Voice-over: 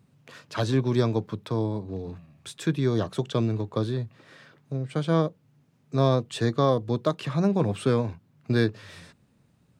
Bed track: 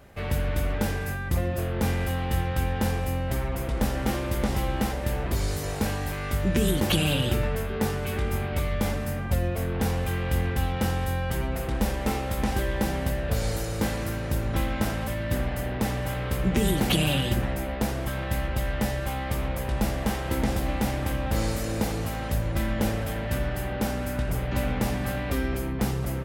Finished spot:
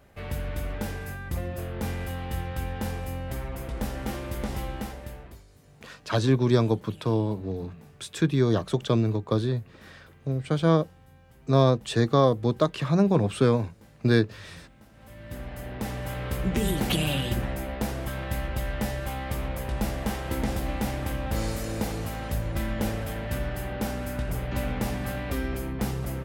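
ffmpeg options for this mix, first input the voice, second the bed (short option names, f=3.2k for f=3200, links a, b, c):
-filter_complex "[0:a]adelay=5550,volume=2dB[a];[1:a]volume=20dB,afade=t=out:st=4.61:d=0.83:silence=0.0749894,afade=t=in:st=14.92:d=1.34:silence=0.0530884[b];[a][b]amix=inputs=2:normalize=0"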